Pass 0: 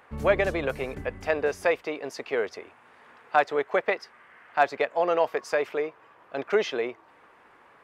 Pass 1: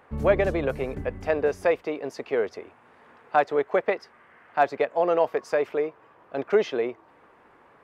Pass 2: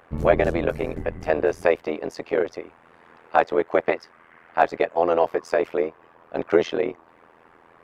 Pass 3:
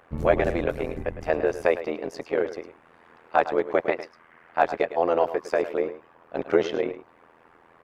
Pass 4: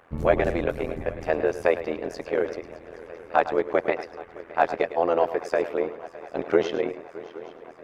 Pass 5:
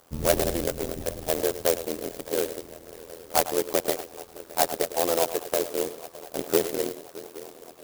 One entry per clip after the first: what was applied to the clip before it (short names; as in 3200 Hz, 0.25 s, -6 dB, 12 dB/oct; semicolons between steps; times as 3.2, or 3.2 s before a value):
tilt shelf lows +4.5 dB, about 910 Hz
AM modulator 83 Hz, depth 95%; gain +6.5 dB
echo 0.106 s -13 dB; gain -2.5 dB
swung echo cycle 0.82 s, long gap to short 3:1, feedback 66%, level -19.5 dB
clock jitter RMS 0.13 ms; gain -2 dB